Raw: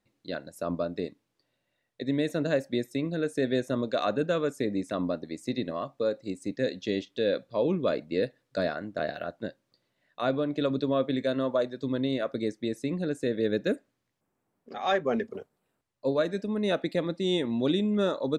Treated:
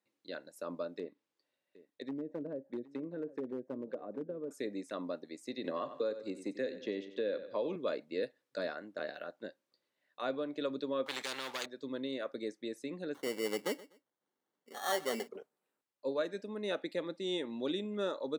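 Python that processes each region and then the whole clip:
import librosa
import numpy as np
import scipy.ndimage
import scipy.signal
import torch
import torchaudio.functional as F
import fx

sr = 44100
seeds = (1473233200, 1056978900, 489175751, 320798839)

y = fx.chain(x, sr, fx.env_lowpass_down(base_hz=350.0, full_db=-23.5),
    fx.clip_hard(threshold_db=-21.5),
    fx.echo_single(ms=767, db=-18.5), at=(0.98, 4.51))
y = fx.chain(y, sr, fx.high_shelf(hz=4000.0, db=-11.5),
    fx.echo_feedback(ms=92, feedback_pct=35, wet_db=-13),
    fx.band_squash(depth_pct=100), at=(5.64, 7.76))
y = fx.chain(y, sr, fx.leveller(passes=1),
    fx.spectral_comp(ratio=4.0), at=(11.06, 11.66))
y = fx.chain(y, sr, fx.sample_hold(seeds[0], rate_hz=2500.0, jitter_pct=0),
    fx.echo_feedback(ms=124, feedback_pct=28, wet_db=-19.5), at=(13.14, 15.28))
y = scipy.signal.sosfilt(scipy.signal.butter(2, 300.0, 'highpass', fs=sr, output='sos'), y)
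y = fx.notch(y, sr, hz=680.0, q=12.0)
y = F.gain(torch.from_numpy(y), -7.0).numpy()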